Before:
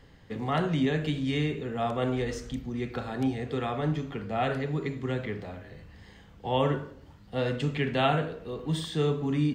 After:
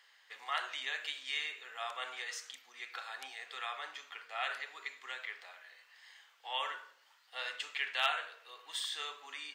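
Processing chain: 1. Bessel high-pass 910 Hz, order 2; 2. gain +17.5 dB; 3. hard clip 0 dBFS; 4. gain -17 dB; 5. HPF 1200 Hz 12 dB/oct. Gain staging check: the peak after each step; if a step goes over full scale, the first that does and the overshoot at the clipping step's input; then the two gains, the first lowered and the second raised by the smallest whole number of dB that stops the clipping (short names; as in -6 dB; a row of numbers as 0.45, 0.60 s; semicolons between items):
-14.5, +3.0, 0.0, -17.0, -15.5 dBFS; step 2, 3.0 dB; step 2 +14.5 dB, step 4 -14 dB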